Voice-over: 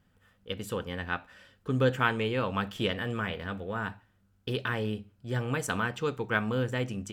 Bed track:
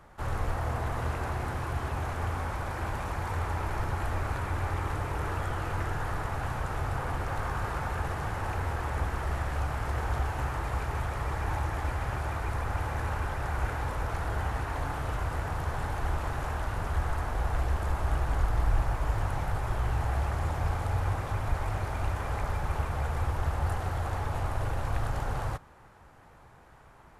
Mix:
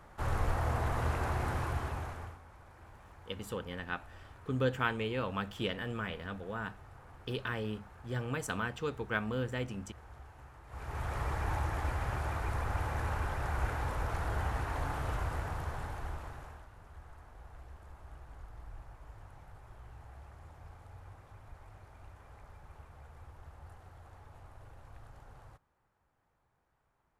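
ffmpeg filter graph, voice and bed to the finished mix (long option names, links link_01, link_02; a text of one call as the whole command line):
ffmpeg -i stem1.wav -i stem2.wav -filter_complex "[0:a]adelay=2800,volume=-5.5dB[link_01];[1:a]volume=18dB,afade=type=out:start_time=1.59:duration=0.8:silence=0.0891251,afade=type=in:start_time=10.67:duration=0.49:silence=0.112202,afade=type=out:start_time=15.12:duration=1.56:silence=0.105925[link_02];[link_01][link_02]amix=inputs=2:normalize=0" out.wav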